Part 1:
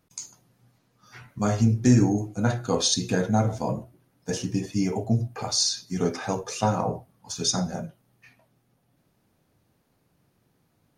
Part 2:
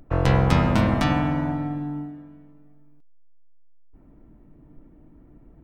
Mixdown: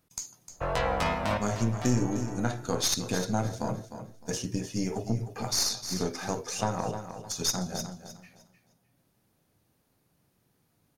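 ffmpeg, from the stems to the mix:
ffmpeg -i stem1.wav -i stem2.wav -filter_complex "[0:a]highshelf=frequency=4900:gain=6.5,aeval=exprs='(tanh(4.47*val(0)+0.75)-tanh(0.75))/4.47':channel_layout=same,volume=0.5dB,asplit=3[link_01][link_02][link_03];[link_02]volume=-12dB[link_04];[1:a]bass=frequency=250:gain=3,treble=frequency=4000:gain=3,flanger=delay=17:depth=2.7:speed=0.8,lowshelf=frequency=410:width_type=q:width=1.5:gain=-10,adelay=500,volume=1.5dB,asplit=2[link_05][link_06];[link_06]volume=-12dB[link_07];[link_03]apad=whole_len=270429[link_08];[link_05][link_08]sidechaincompress=threshold=-47dB:ratio=8:attack=12:release=327[link_09];[link_04][link_07]amix=inputs=2:normalize=0,aecho=0:1:305|610|915|1220:1|0.24|0.0576|0.0138[link_10];[link_01][link_09][link_10]amix=inputs=3:normalize=0,acompressor=threshold=-29dB:ratio=1.5" out.wav

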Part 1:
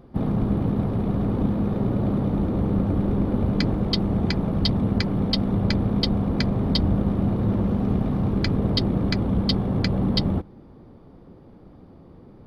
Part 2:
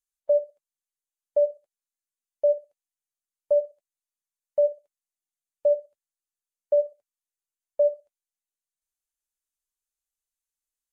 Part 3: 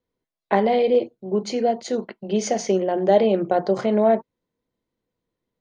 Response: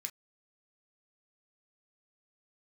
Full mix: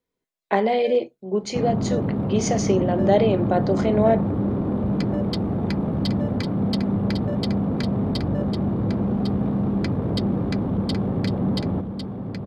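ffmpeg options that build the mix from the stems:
-filter_complex "[0:a]highpass=100,highshelf=frequency=2100:gain=-9,asoftclip=type=tanh:threshold=-19dB,adelay=1400,volume=2dB,asplit=2[link_01][link_02];[link_02]volume=-7dB[link_03];[1:a]volume=17dB,asoftclip=hard,volume=-17dB,adelay=550,volume=-12dB[link_04];[2:a]volume=-2dB,asplit=2[link_05][link_06];[link_06]volume=-4.5dB[link_07];[3:a]atrim=start_sample=2205[link_08];[link_07][link_08]afir=irnorm=-1:irlink=0[link_09];[link_03]aecho=0:1:1102:1[link_10];[link_01][link_04][link_05][link_09][link_10]amix=inputs=5:normalize=0"

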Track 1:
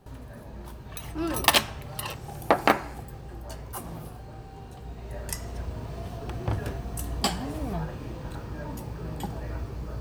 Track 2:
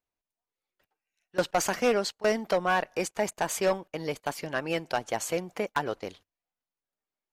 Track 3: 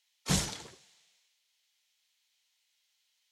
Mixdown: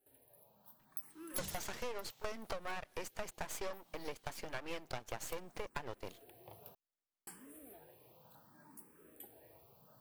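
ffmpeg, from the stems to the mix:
ffmpeg -i stem1.wav -i stem2.wav -i stem3.wav -filter_complex "[0:a]highpass=240,aexciter=amount=10.9:drive=3.4:freq=9000,asplit=2[link_01][link_02];[link_02]afreqshift=0.65[link_03];[link_01][link_03]amix=inputs=2:normalize=1,volume=-19.5dB,asplit=3[link_04][link_05][link_06];[link_04]atrim=end=6.75,asetpts=PTS-STARTPTS,afade=type=out:start_time=6.746:duration=0.004:curve=hsin[link_07];[link_05]atrim=start=6.75:end=7.27,asetpts=PTS-STARTPTS,volume=0[link_08];[link_06]atrim=start=7.27,asetpts=PTS-STARTPTS,afade=type=in:duration=0.004:curve=hsin[link_09];[link_07][link_08][link_09]concat=n=3:v=0:a=1[link_10];[1:a]highpass=49,aeval=exprs='max(val(0),0)':channel_layout=same,volume=-3dB,asplit=2[link_11][link_12];[2:a]acompressor=threshold=-39dB:ratio=2.5,adelay=1100,volume=0.5dB[link_13];[link_12]apad=whole_len=441055[link_14];[link_10][link_14]sidechaincompress=threshold=-37dB:ratio=8:attack=16:release=390[link_15];[link_15][link_11][link_13]amix=inputs=3:normalize=0,acompressor=threshold=-37dB:ratio=6" out.wav

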